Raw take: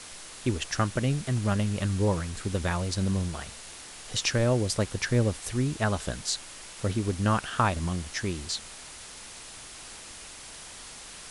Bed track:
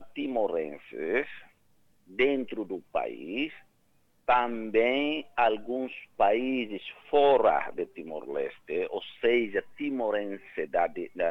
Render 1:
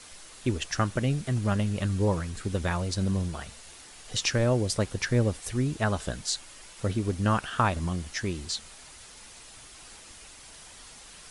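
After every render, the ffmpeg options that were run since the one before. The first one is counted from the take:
-af "afftdn=nr=6:nf=-45"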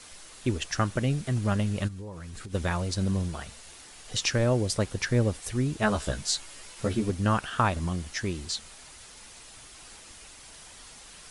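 -filter_complex "[0:a]asplit=3[a][b][c];[a]afade=t=out:st=1.87:d=0.02[d];[b]acompressor=threshold=-36dB:ratio=12:attack=3.2:release=140:knee=1:detection=peak,afade=t=in:st=1.87:d=0.02,afade=t=out:st=2.53:d=0.02[e];[c]afade=t=in:st=2.53:d=0.02[f];[d][e][f]amix=inputs=3:normalize=0,asettb=1/sr,asplit=3[g][h][i];[g]atrim=end=5.814[j];[h]atrim=start=5.81:end=7.1,asetpts=PTS-STARTPTS,afade=t=in:d=0.004:c=qsin,afade=t=out:st=1.286:d=0.004:c=qsin,asplit=2[k][l];[l]adelay=14,volume=-2dB[m];[k][m]amix=inputs=2:normalize=0,atrim=end_sample=56889[n];[i]atrim=start=7.096[o];[j][n]acrossfade=d=0.004:c1=hsin:c2=qsin[p];[p][o]acrossfade=d=0.004:c1=qsin:c2=hsin"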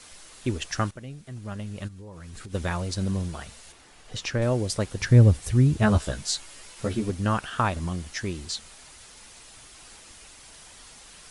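-filter_complex "[0:a]asettb=1/sr,asplit=3[a][b][c];[a]atrim=end=3.724[d];[b]atrim=start=3.72:end=4.42,asetpts=PTS-STARTPTS,afade=t=in:d=0.004:c=qsin,afade=t=out:st=0.696:d=0.004:c=qsin,highshelf=f=3.5k:g=-10[e];[c]atrim=start=4.416[f];[d][e]acrossfade=d=0.004:c1=hsin:c2=qsin[g];[g][f]acrossfade=d=0.004:c1=qsin:c2=hsin,asettb=1/sr,asplit=3[h][i][j];[h]atrim=end=4.994[k];[i]atrim=start=4.99:end=5.98,asetpts=PTS-STARTPTS,afade=t=in:d=0.004:c=qsin,afade=t=out:st=0.986:d=0.004:c=qsin,equalizer=f=80:t=o:w=2.6:g=13.5[l];[j]atrim=start=5.976[m];[k][l]acrossfade=d=0.004:c1=hsin:c2=qsin[n];[n][m]acrossfade=d=0.004:c1=qsin:c2=hsin,asplit=2[o][p];[o]atrim=end=0.91,asetpts=PTS-STARTPTS,afade=t=out:st=0.906:d=0.004:c=hsin:silence=0.211349[q];[p]atrim=start=0.91,asetpts=PTS-STARTPTS,afade=t=in:d=1.46:c=qua:silence=0.211349[r];[q][r]concat=n=2:v=0:a=1"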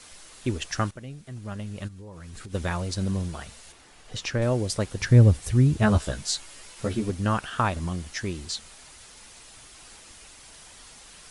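-af anull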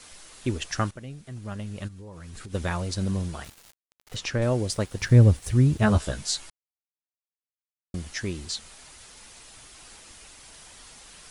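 -filter_complex "[0:a]asettb=1/sr,asplit=3[a][b][c];[a]atrim=end=3.444[d];[b]atrim=start=3.44:end=4.16,asetpts=PTS-STARTPTS,afade=t=in:d=0.004:c=qsin,afade=t=out:st=0.716:d=0.004:c=qsin,aeval=exprs='val(0)*gte(abs(val(0)),0.00841)':c=same[e];[c]atrim=start=4.156[f];[d][e]acrossfade=d=0.004:c1=hsin:c2=qsin[g];[g][f]acrossfade=d=0.004:c1=qsin:c2=hsin,asettb=1/sr,asplit=3[h][i][j];[h]atrim=end=4.714[k];[i]atrim=start=4.71:end=5.91,asetpts=PTS-STARTPTS,afade=t=in:d=0.004:c=qsin,afade=t=out:st=1.196:d=0.004:c=qsin,aeval=exprs='sgn(val(0))*max(abs(val(0))-0.00282,0)':c=same[l];[j]atrim=start=5.906[m];[k][l]acrossfade=d=0.004:c1=hsin:c2=qsin[n];[n][m]acrossfade=d=0.004:c1=qsin:c2=hsin,asplit=3[o][p][q];[o]atrim=end=6.5,asetpts=PTS-STARTPTS,afade=t=out:st=6.496:d=0.004:c=hsin[r];[p]atrim=start=6.5:end=7.94,asetpts=PTS-STARTPTS,volume=0[s];[q]atrim=start=7.94,asetpts=PTS-STARTPTS,afade=t=in:d=0.004:c=hsin[t];[r][s][t]concat=n=3:v=0:a=1"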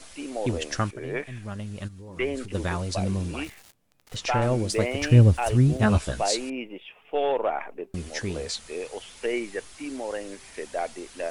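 -filter_complex "[1:a]volume=-3.5dB[a];[0:a][a]amix=inputs=2:normalize=0"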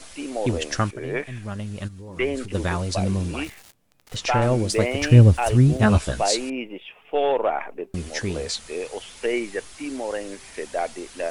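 -af "volume=3.5dB"

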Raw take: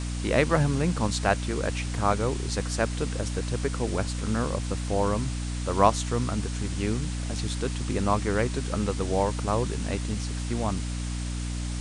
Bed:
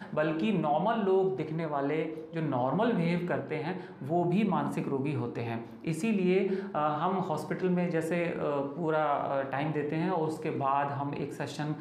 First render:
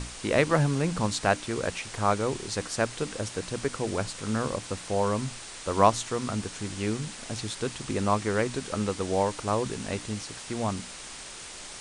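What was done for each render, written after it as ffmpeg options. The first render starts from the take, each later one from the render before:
-af "bandreject=f=60:t=h:w=6,bandreject=f=120:t=h:w=6,bandreject=f=180:t=h:w=6,bandreject=f=240:t=h:w=6,bandreject=f=300:t=h:w=6"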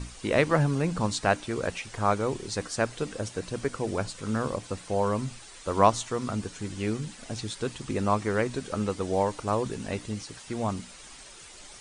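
-af "afftdn=nr=9:nf=-42"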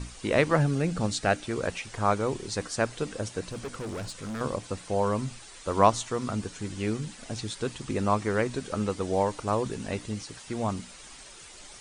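-filter_complex "[0:a]asettb=1/sr,asplit=3[a][b][c];[a]atrim=end=0.624[d];[b]atrim=start=0.62:end=1.44,asetpts=PTS-STARTPTS,afade=t=in:d=0.004:c=qsin,afade=t=out:st=0.816:d=0.004:c=qsin,equalizer=f=1k:t=o:w=0.24:g=-13[e];[c]atrim=start=1.436[f];[d][e]acrossfade=d=0.004:c1=hsin:c2=qsin[g];[g][f]acrossfade=d=0.004:c1=qsin:c2=hsin,asettb=1/sr,asplit=3[h][i][j];[h]atrim=end=3.514[k];[i]atrim=start=3.51:end=4.41,asetpts=PTS-STARTPTS,afade=t=in:d=0.004:c=qsin,afade=t=out:st=0.896:d=0.004:c=qsin,volume=32dB,asoftclip=hard,volume=-32dB[l];[j]atrim=start=4.406[m];[k][l]acrossfade=d=0.004:c1=hsin:c2=qsin[n];[n][m]acrossfade=d=0.004:c1=qsin:c2=hsin"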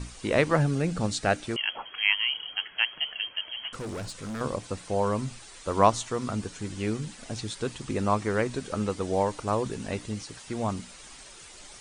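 -filter_complex "[0:a]asettb=1/sr,asplit=3[a][b][c];[a]atrim=end=1.564[d];[b]atrim=start=1.56:end=3.73,asetpts=PTS-STARTPTS,afade=t=in:d=0.004:c=qsin,afade=t=out:st=2.166:d=0.004:c=qsin,lowpass=f=2.8k:t=q:w=0.5098,lowpass=f=2.8k:t=q:w=0.6013,lowpass=f=2.8k:t=q:w=0.9,lowpass=f=2.8k:t=q:w=2.563,afreqshift=-3300[e];[c]atrim=start=3.726[f];[d][e]acrossfade=d=0.004:c1=hsin:c2=qsin[g];[g][f]acrossfade=d=0.004:c1=qsin:c2=hsin"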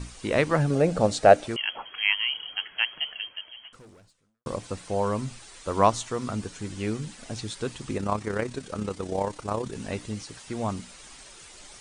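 -filter_complex "[0:a]asettb=1/sr,asplit=3[a][b][c];[a]atrim=end=0.704[d];[b]atrim=start=0.7:end=1.48,asetpts=PTS-STARTPTS,afade=t=in:d=0.004:c=qsin,afade=t=out:st=0.776:d=0.004:c=qsin,equalizer=f=590:w=1.2:g=13.5[e];[c]atrim=start=1.476[f];[d][e]acrossfade=d=0.004:c1=hsin:c2=qsin[g];[g][f]acrossfade=d=0.004:c1=qsin:c2=hsin,asplit=3[h][i][j];[h]afade=t=out:st=7.96:d=0.02[k];[i]tremolo=f=33:d=0.571,afade=t=in:st=7.96:d=0.02,afade=t=out:st=9.74:d=0.02[l];[j]afade=t=in:st=9.74:d=0.02[m];[k][l][m]amix=inputs=3:normalize=0,asplit=2[n][o];[n]atrim=end=4.46,asetpts=PTS-STARTPTS,afade=t=out:st=3.02:d=1.44:c=qua[p];[o]atrim=start=4.46,asetpts=PTS-STARTPTS,afade=t=in:d=0.004:c=hsin[q];[p][q]concat=n=2:v=0:a=1"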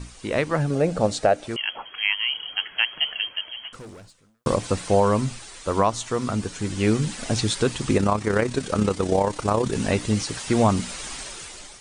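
-af "dynaudnorm=f=400:g=5:m=16dB,alimiter=limit=-8dB:level=0:latency=1:release=231"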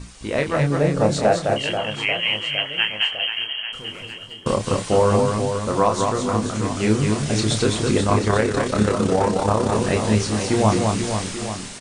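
-filter_complex "[0:a]asplit=2[a][b];[b]adelay=28,volume=-5dB[c];[a][c]amix=inputs=2:normalize=0,aecho=1:1:210|483|837.9|1299|1899:0.631|0.398|0.251|0.158|0.1"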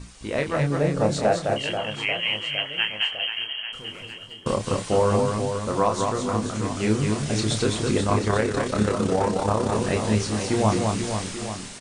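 -af "volume=-3.5dB"

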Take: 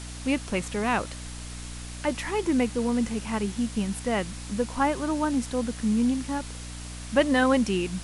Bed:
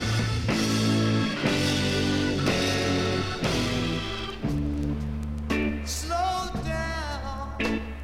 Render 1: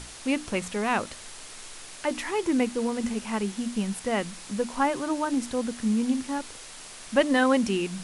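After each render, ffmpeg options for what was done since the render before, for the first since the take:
-af "bandreject=f=60:t=h:w=6,bandreject=f=120:t=h:w=6,bandreject=f=180:t=h:w=6,bandreject=f=240:t=h:w=6,bandreject=f=300:t=h:w=6"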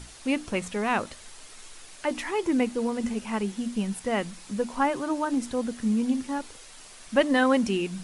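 -af "afftdn=nr=6:nf=-44"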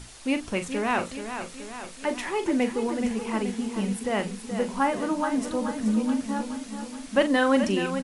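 -filter_complex "[0:a]asplit=2[a][b];[b]adelay=41,volume=-10dB[c];[a][c]amix=inputs=2:normalize=0,aecho=1:1:427|854|1281|1708|2135|2562|2989:0.355|0.206|0.119|0.0692|0.0402|0.0233|0.0135"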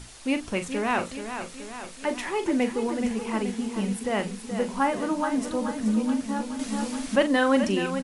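-filter_complex "[0:a]asettb=1/sr,asplit=3[a][b][c];[a]atrim=end=6.594[d];[b]atrim=start=6.59:end=7.16,asetpts=PTS-STARTPTS,afade=t=in:d=0.004:c=qsin,afade=t=out:st=0.566:d=0.004:c=qsin,acontrast=67[e];[c]atrim=start=7.156[f];[d][e]acrossfade=d=0.004:c1=hsin:c2=qsin[g];[g][f]acrossfade=d=0.004:c1=qsin:c2=hsin"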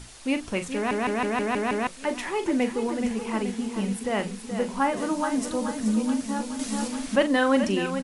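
-filter_complex "[0:a]asettb=1/sr,asplit=3[a][b][c];[a]atrim=end=4.974[d];[b]atrim=start=4.97:end=6.88,asetpts=PTS-STARTPTS,afade=t=in:d=0.004:c=qsin,afade=t=out:st=1.906:d=0.004:c=qsin,bass=f=250:g=0,treble=f=4k:g=5[e];[c]atrim=start=6.876[f];[d][e]acrossfade=d=0.004:c1=hsin:c2=qsin[g];[g][f]acrossfade=d=0.004:c1=qsin:c2=hsin,asplit=8[h][i][j][k][l][m][n][o];[h]atrim=end=0.912[p];[i]atrim=start=0.748:end=0.912[q];[j]atrim=start=0.748:end=0.912[r];[k]atrim=start=0.748:end=0.912[s];[l]atrim=start=0.748:end=0.912[t];[m]atrim=start=0.748:end=0.912[u];[n]atrim=start=0.748:end=0.912[v];[o]atrim=start=1.868[w];[p][q]acrossfade=d=0.004:c1=hsin:c2=hsin[x];[x][r]acrossfade=d=0.004:c1=hsin:c2=hsin[y];[y][s]acrossfade=d=0.004:c1=hsin:c2=hsin[z];[z][t]acrossfade=d=0.004:c1=hsin:c2=hsin[aa];[aa][u]acrossfade=d=0.004:c1=hsin:c2=hsin[ab];[ab][v]acrossfade=d=0.004:c1=hsin:c2=hsin[ac];[ac][w]acrossfade=d=0.004:c1=hsin:c2=hsin"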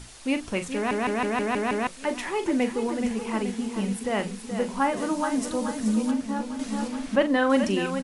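-filter_complex "[0:a]asettb=1/sr,asplit=3[a][b][c];[a]atrim=end=6.114[d];[b]atrim=start=6.11:end=7.5,asetpts=PTS-STARTPTS,afade=t=in:d=0.004:c=qsin,afade=t=out:st=1.386:d=0.004:c=qsin,highshelf=f=4.6k:g=-10.5[e];[c]atrim=start=7.496[f];[d][e]acrossfade=d=0.004:c1=hsin:c2=qsin[g];[g][f]acrossfade=d=0.004:c1=qsin:c2=hsin"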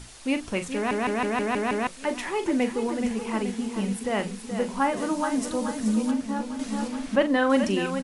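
-af anull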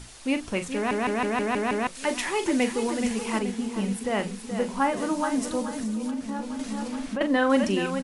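-filter_complex "[0:a]asettb=1/sr,asplit=3[a][b][c];[a]atrim=end=1.954[d];[b]atrim=start=1.95:end=3.39,asetpts=PTS-STARTPTS,afade=t=in:d=0.004:c=qsin,afade=t=out:st=1.436:d=0.004:c=qsin,highshelf=f=2.2k:g=7.5[e];[c]atrim=start=3.386[f];[d][e]acrossfade=d=0.004:c1=hsin:c2=qsin[g];[g][f]acrossfade=d=0.004:c1=qsin:c2=hsin,asettb=1/sr,asplit=3[h][i][j];[h]atrim=end=5.614[k];[i]atrim=start=5.61:end=7.21,asetpts=PTS-STARTPTS,afade=t=in:d=0.004:c=qsin,afade=t=out:st=1.596:d=0.004:c=qsin,acompressor=threshold=-26dB:ratio=6:attack=3.2:release=140:knee=1:detection=peak[l];[j]atrim=start=7.206[m];[k][l]acrossfade=d=0.004:c1=hsin:c2=qsin[n];[n][m]acrossfade=d=0.004:c1=qsin:c2=hsin"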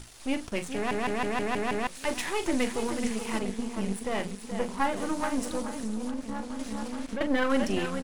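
-af "aeval=exprs='if(lt(val(0),0),0.251*val(0),val(0))':c=same"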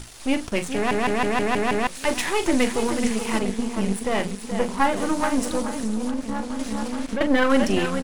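-af "volume=7dB"

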